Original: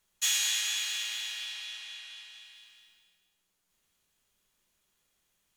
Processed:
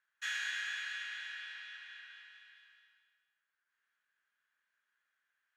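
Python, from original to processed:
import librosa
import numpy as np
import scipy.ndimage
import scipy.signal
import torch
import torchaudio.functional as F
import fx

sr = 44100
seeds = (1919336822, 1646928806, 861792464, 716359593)

y = fx.bandpass_q(x, sr, hz=1600.0, q=7.6)
y = F.gain(torch.from_numpy(y), 9.0).numpy()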